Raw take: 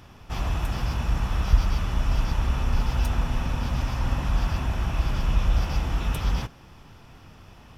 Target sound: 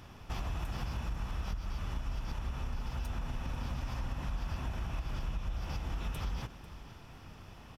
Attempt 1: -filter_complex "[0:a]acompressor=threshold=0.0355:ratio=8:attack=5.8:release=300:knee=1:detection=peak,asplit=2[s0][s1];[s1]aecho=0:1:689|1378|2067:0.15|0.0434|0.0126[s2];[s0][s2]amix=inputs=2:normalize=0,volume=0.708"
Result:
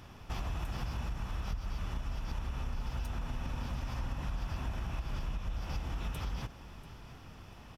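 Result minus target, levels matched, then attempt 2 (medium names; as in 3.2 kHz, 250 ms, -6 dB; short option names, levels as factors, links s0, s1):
echo 195 ms late
-filter_complex "[0:a]acompressor=threshold=0.0355:ratio=8:attack=5.8:release=300:knee=1:detection=peak,asplit=2[s0][s1];[s1]aecho=0:1:494|988|1482:0.15|0.0434|0.0126[s2];[s0][s2]amix=inputs=2:normalize=0,volume=0.708"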